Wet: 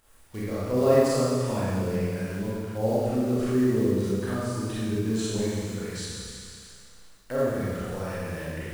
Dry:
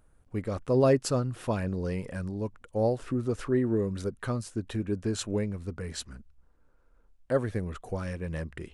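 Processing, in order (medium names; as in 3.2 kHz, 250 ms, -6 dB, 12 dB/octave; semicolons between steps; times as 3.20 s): companded quantiser 6-bit; Schroeder reverb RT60 1.9 s, combs from 28 ms, DRR -9.5 dB; tape noise reduction on one side only encoder only; trim -7 dB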